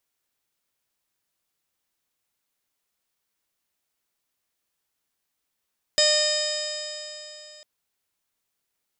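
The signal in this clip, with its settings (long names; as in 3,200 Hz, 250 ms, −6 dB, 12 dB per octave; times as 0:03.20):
stiff-string partials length 1.65 s, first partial 604 Hz, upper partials −18/−6/−12.5/−8/−4/−15/3/−17/−17/−4.5/−8 dB, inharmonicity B 0.0013, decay 3.30 s, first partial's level −21.5 dB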